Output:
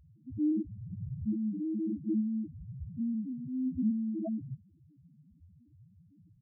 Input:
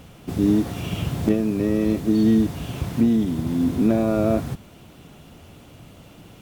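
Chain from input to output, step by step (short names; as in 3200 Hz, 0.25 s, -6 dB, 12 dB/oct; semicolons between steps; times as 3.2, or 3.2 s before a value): 2.2–3.67 compressor 4:1, threshold -22 dBFS, peak gain reduction 7.5 dB; loudest bins only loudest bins 1; 0.62–1.06 echo throw 0.28 s, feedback 15%, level -17.5 dB; gain -4 dB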